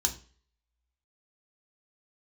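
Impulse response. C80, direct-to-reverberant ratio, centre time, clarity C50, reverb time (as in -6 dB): 18.5 dB, 1.5 dB, 10 ms, 14.0 dB, 0.40 s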